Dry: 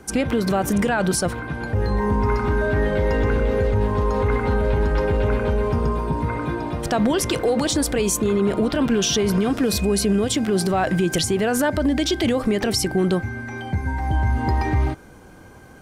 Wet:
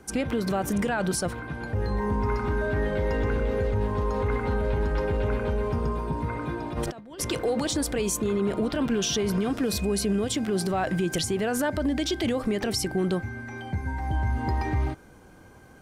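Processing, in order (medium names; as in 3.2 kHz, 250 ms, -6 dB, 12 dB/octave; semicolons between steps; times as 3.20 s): 6.72–7.20 s: compressor with a negative ratio -27 dBFS, ratio -0.5; trim -6 dB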